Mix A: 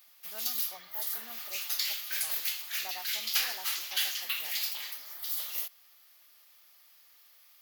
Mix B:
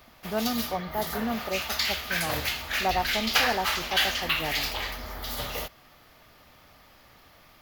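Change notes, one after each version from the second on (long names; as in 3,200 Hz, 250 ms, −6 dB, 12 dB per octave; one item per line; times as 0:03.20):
master: remove first difference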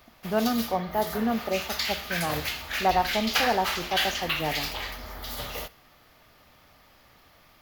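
background −3.5 dB
reverb: on, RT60 0.55 s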